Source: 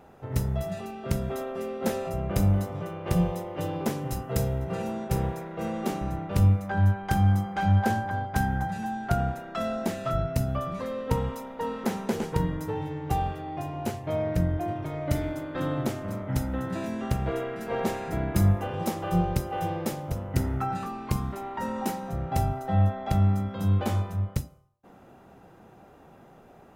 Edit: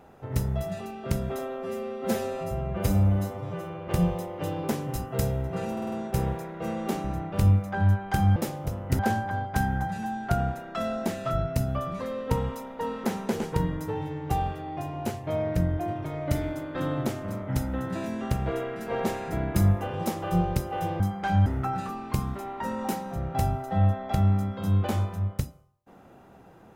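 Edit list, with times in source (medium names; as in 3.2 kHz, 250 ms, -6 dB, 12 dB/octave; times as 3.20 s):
1.39–3.05 s: stretch 1.5×
4.89 s: stutter 0.05 s, 5 plays
7.33–7.79 s: swap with 19.80–20.43 s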